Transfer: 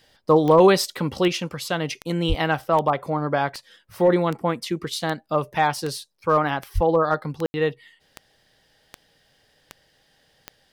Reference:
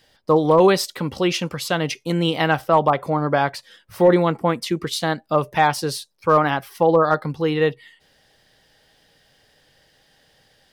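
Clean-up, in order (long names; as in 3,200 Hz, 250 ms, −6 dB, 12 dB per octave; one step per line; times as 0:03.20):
click removal
0:02.28–0:02.40: high-pass filter 140 Hz 24 dB per octave
0:06.74–0:06.86: high-pass filter 140 Hz 24 dB per octave
ambience match 0:07.46–0:07.54
level 0 dB, from 0:01.28 +3.5 dB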